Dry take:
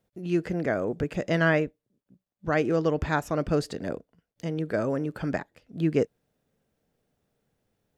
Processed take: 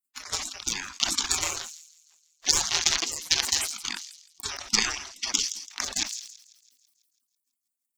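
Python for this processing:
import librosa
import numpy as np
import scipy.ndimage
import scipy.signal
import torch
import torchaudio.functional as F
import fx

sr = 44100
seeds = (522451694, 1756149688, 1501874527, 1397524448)

y = 10.0 ** (-18.0 / 20.0) * (np.abs((x / 10.0 ** (-18.0 / 20.0) + 3.0) % 4.0 - 2.0) - 1.0)
y = fx.transient(y, sr, attack_db=11, sustain_db=-4)
y = fx.curve_eq(y, sr, hz=(140.0, 230.0, 370.0, 520.0, 6000.0, 9300.0), db=(0, -27, -7, 2, 15, -7))
y = fx.spec_gate(y, sr, threshold_db=-30, keep='weak')
y = fx.echo_wet_highpass(y, sr, ms=165, feedback_pct=59, hz=5300.0, wet_db=-13.5)
y = fx.transient(y, sr, attack_db=12, sustain_db=-3)
y = fx.high_shelf(y, sr, hz=9200.0, db=7.5, at=(3.42, 3.82))
y = fx.sustainer(y, sr, db_per_s=69.0)
y = F.gain(torch.from_numpy(y), 7.0).numpy()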